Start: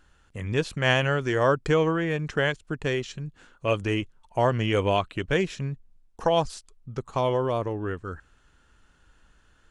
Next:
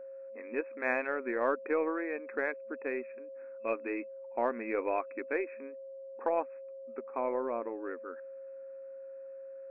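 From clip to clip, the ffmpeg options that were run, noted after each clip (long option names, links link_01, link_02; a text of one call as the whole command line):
ffmpeg -i in.wav -af "aeval=exprs='val(0)+0.0178*sin(2*PI*540*n/s)':channel_layout=same,afftfilt=real='re*between(b*sr/4096,220,2600)':imag='im*between(b*sr/4096,220,2600)':win_size=4096:overlap=0.75,aeval=exprs='0.376*(cos(1*acos(clip(val(0)/0.376,-1,1)))-cos(1*PI/2))+0.00299*(cos(6*acos(clip(val(0)/0.376,-1,1)))-cos(6*PI/2))':channel_layout=same,volume=-8dB" out.wav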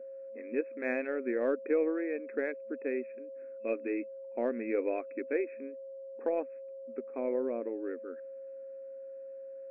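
ffmpeg -i in.wav -af "equalizer=frequency=125:width_type=o:width=1:gain=-6,equalizer=frequency=250:width_type=o:width=1:gain=9,equalizer=frequency=500:width_type=o:width=1:gain=7,equalizer=frequency=1000:width_type=o:width=1:gain=-12,equalizer=frequency=2000:width_type=o:width=1:gain=3,volume=-4dB" out.wav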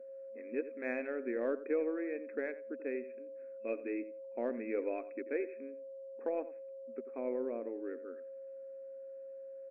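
ffmpeg -i in.wav -filter_complex "[0:a]asplit=2[link_01][link_02];[link_02]adelay=87,lowpass=frequency=2200:poles=1,volume=-14dB,asplit=2[link_03][link_04];[link_04]adelay=87,lowpass=frequency=2200:poles=1,volume=0.17[link_05];[link_01][link_03][link_05]amix=inputs=3:normalize=0,volume=-4.5dB" out.wav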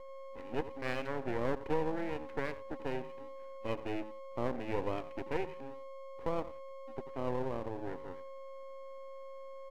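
ffmpeg -i in.wav -af "aeval=exprs='max(val(0),0)':channel_layout=same,volume=4.5dB" out.wav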